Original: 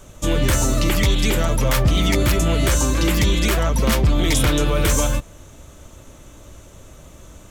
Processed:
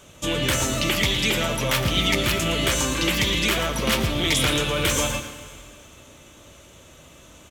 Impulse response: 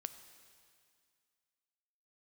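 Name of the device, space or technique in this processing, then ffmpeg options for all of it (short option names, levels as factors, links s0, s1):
PA in a hall: -filter_complex "[0:a]highpass=f=140:p=1,equalizer=f=2900:t=o:w=1.1:g=7.5,aecho=1:1:114:0.299[s0];[1:a]atrim=start_sample=2205[s1];[s0][s1]afir=irnorm=-1:irlink=0"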